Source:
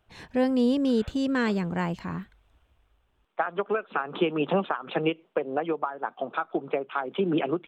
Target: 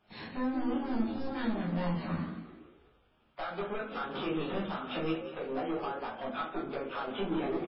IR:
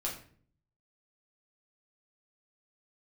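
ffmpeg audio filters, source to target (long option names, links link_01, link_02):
-filter_complex "[0:a]highpass=frequency=130:poles=1,equalizer=frequency=220:width_type=o:width=0.38:gain=12.5,bandreject=frequency=60:width_type=h:width=6,bandreject=frequency=120:width_type=h:width=6,bandreject=frequency=180:width_type=h:width=6,bandreject=frequency=240:width_type=h:width=6,bandreject=frequency=300:width_type=h:width=6,bandreject=frequency=360:width_type=h:width=6,acompressor=threshold=-36dB:ratio=2,volume=34dB,asoftclip=hard,volume=-34dB,asettb=1/sr,asplit=3[link_01][link_02][link_03];[link_01]atrim=end=0.794[link_04];[link_02]atrim=start=0.79:end=3.41,asetpts=PTS-STARTPTS,afade=type=in:duration=0.004:curve=qsin,afade=type=out:start_time=2.616:duration=0.004:curve=qsin,asplit=2[link_05][link_06];[link_06]adelay=13,volume=-5.5dB[link_07];[link_05][link_07]amix=inputs=2:normalize=0,atrim=end_sample=115542[link_08];[link_03]atrim=start=3.406[link_09];[link_04][link_08]acrossfade=duration=0.004:curve1=hsin:curve2=qsin[link_10];[link_10][link_09]acrossfade=duration=0.004:curve1=qsin:curve2=hsin,asplit=5[link_11][link_12][link_13][link_14][link_15];[link_12]adelay=183,afreqshift=66,volume=-11dB[link_16];[link_13]adelay=366,afreqshift=132,volume=-19.4dB[link_17];[link_14]adelay=549,afreqshift=198,volume=-27.8dB[link_18];[link_15]adelay=732,afreqshift=264,volume=-36.2dB[link_19];[link_11][link_16][link_17][link_18][link_19]amix=inputs=5:normalize=0[link_20];[1:a]atrim=start_sample=2205[link_21];[link_20][link_21]afir=irnorm=-1:irlink=0" -ar 12000 -c:a libmp3lame -b:a 16k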